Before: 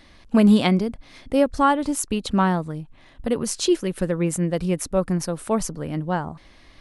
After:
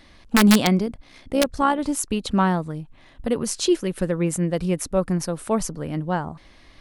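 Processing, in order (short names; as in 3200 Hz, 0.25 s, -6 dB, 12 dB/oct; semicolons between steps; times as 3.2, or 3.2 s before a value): wrapped overs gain 7.5 dB; 0.86–1.79 AM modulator 63 Hz, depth 30%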